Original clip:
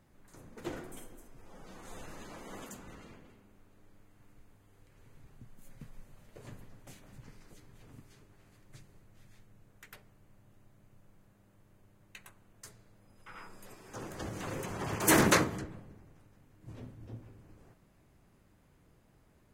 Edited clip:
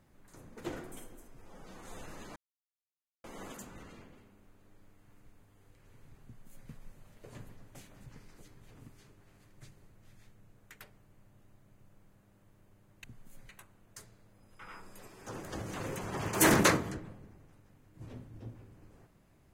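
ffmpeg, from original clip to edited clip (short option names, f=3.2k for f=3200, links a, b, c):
-filter_complex "[0:a]asplit=4[a][b][c][d];[a]atrim=end=2.36,asetpts=PTS-STARTPTS,afade=t=out:st=2.356:d=0.004:c=hsin,apad=pad_dur=0.88[e];[b]atrim=start=2.36:end=12.162,asetpts=PTS-STARTPTS,afade=t=in:d=0.004:c=hsin[f];[c]atrim=start=5.358:end=5.812[g];[d]atrim=start=12.158[h];[e][f]concat=n=2:v=0:a=1[i];[i][g]acrossfade=d=0.004:c1=hsin:c2=hsin[j];[j][h]acrossfade=d=0.004:c1=hsin:c2=hsin"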